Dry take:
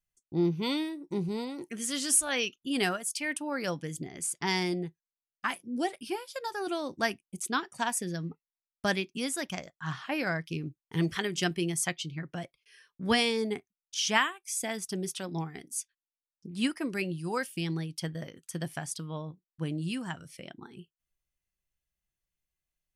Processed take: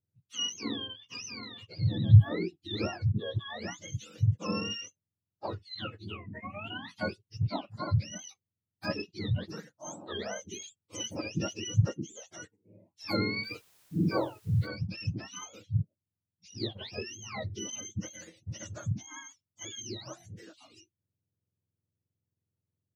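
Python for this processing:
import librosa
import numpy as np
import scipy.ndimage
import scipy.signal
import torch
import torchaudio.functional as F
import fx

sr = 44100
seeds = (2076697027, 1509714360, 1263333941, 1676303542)

y = fx.octave_mirror(x, sr, pivot_hz=1000.0)
y = fx.quant_dither(y, sr, seeds[0], bits=10, dither='triangular', at=(13.43, 14.66), fade=0.02)
y = F.gain(torch.from_numpy(y), -4.0).numpy()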